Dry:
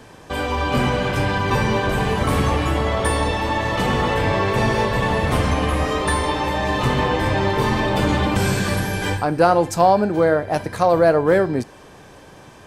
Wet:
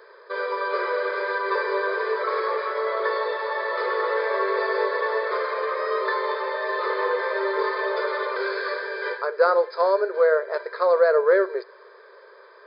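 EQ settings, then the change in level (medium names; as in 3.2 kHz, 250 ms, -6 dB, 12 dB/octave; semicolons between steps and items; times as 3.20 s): brick-wall FIR band-pass 370–5100 Hz; static phaser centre 770 Hz, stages 6; 0.0 dB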